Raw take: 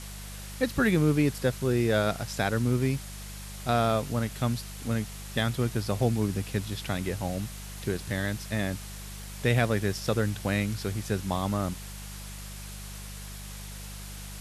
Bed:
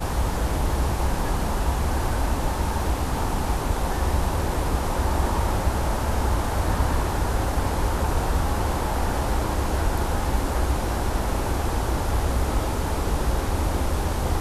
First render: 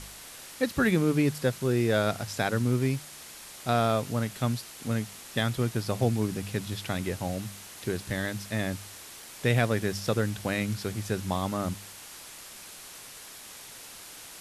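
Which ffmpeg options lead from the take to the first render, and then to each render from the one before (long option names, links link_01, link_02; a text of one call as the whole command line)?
ffmpeg -i in.wav -af "bandreject=frequency=50:width_type=h:width=4,bandreject=frequency=100:width_type=h:width=4,bandreject=frequency=150:width_type=h:width=4,bandreject=frequency=200:width_type=h:width=4" out.wav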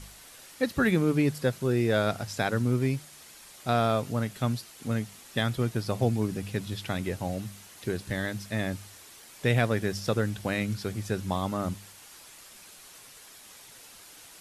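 ffmpeg -i in.wav -af "afftdn=noise_reduction=6:noise_floor=-46" out.wav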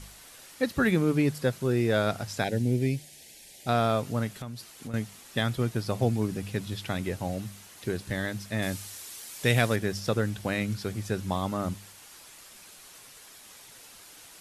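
ffmpeg -i in.wav -filter_complex "[0:a]asettb=1/sr,asplit=3[link_01][link_02][link_03];[link_01]atrim=end=2.444[link_04];[link_02]atrim=start=2.44:end=3.67,asetpts=PTS-STARTPTS,afade=type=in:duration=0.004:curve=qsin,afade=type=out:start_time=1.226:duration=0.004:curve=qsin,asuperstop=centerf=1200:order=4:qfactor=1.1[link_05];[link_03]atrim=start=3.666[link_06];[link_04][link_05]acrossfade=duration=0.004:curve1=hsin:curve2=qsin[link_07];[link_07][link_06]acrossfade=duration=0.004:curve1=qsin:curve2=hsin,asettb=1/sr,asplit=3[link_08][link_09][link_10];[link_08]atrim=end=4.314[link_11];[link_09]atrim=start=4.31:end=4.94,asetpts=PTS-STARTPTS,afade=type=in:duration=0.004:curve=qsin,afade=type=out:start_time=0.626:duration=0.004:curve=qsin,acompressor=threshold=-34dB:ratio=10:attack=3.2:release=140:knee=1:detection=peak[link_12];[link_10]atrim=start=4.936[link_13];[link_11][link_12]acrossfade=duration=0.004:curve1=hsin:curve2=qsin[link_14];[link_14][link_13]acrossfade=duration=0.004:curve1=qsin:curve2=hsin,asettb=1/sr,asplit=3[link_15][link_16][link_17];[link_15]atrim=end=8.624[link_18];[link_16]atrim=start=8.62:end=9.76,asetpts=PTS-STARTPTS,afade=type=in:duration=0.004:curve=qsin,afade=type=out:start_time=1.136:duration=0.004:curve=qsin,highshelf=frequency=3100:gain=9.5[link_19];[link_17]atrim=start=9.756[link_20];[link_18][link_19]acrossfade=duration=0.004:curve1=hsin:curve2=qsin[link_21];[link_21][link_20]acrossfade=duration=0.004:curve1=qsin:curve2=hsin" out.wav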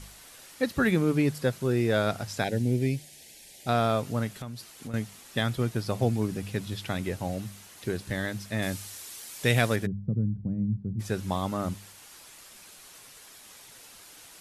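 ffmpeg -i in.wav -filter_complex "[0:a]asplit=3[link_01][link_02][link_03];[link_01]afade=type=out:start_time=9.85:duration=0.02[link_04];[link_02]lowpass=frequency=180:width_type=q:width=1.9,afade=type=in:start_time=9.85:duration=0.02,afade=type=out:start_time=10.99:duration=0.02[link_05];[link_03]afade=type=in:start_time=10.99:duration=0.02[link_06];[link_04][link_05][link_06]amix=inputs=3:normalize=0" out.wav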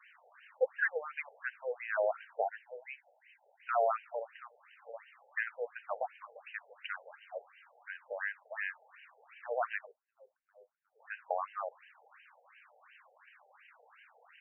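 ffmpeg -i in.wav -af "afftfilt=real='re*between(b*sr/1024,600*pow(2200/600,0.5+0.5*sin(2*PI*2.8*pts/sr))/1.41,600*pow(2200/600,0.5+0.5*sin(2*PI*2.8*pts/sr))*1.41)':imag='im*between(b*sr/1024,600*pow(2200/600,0.5+0.5*sin(2*PI*2.8*pts/sr))/1.41,600*pow(2200/600,0.5+0.5*sin(2*PI*2.8*pts/sr))*1.41)':win_size=1024:overlap=0.75" out.wav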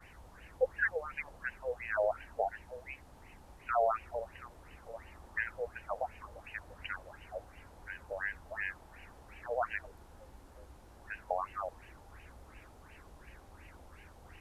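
ffmpeg -i in.wav -i bed.wav -filter_complex "[1:a]volume=-32dB[link_01];[0:a][link_01]amix=inputs=2:normalize=0" out.wav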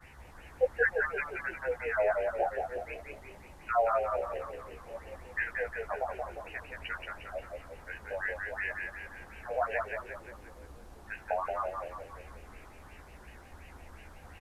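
ffmpeg -i in.wav -filter_complex "[0:a]asplit=2[link_01][link_02];[link_02]adelay=14,volume=-2dB[link_03];[link_01][link_03]amix=inputs=2:normalize=0,asplit=8[link_04][link_05][link_06][link_07][link_08][link_09][link_10][link_11];[link_05]adelay=177,afreqshift=-35,volume=-4dB[link_12];[link_06]adelay=354,afreqshift=-70,volume=-9.8dB[link_13];[link_07]adelay=531,afreqshift=-105,volume=-15.7dB[link_14];[link_08]adelay=708,afreqshift=-140,volume=-21.5dB[link_15];[link_09]adelay=885,afreqshift=-175,volume=-27.4dB[link_16];[link_10]adelay=1062,afreqshift=-210,volume=-33.2dB[link_17];[link_11]adelay=1239,afreqshift=-245,volume=-39.1dB[link_18];[link_04][link_12][link_13][link_14][link_15][link_16][link_17][link_18]amix=inputs=8:normalize=0" out.wav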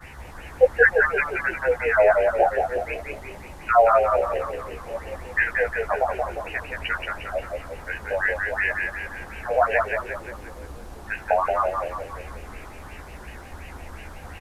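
ffmpeg -i in.wav -af "volume=11.5dB" out.wav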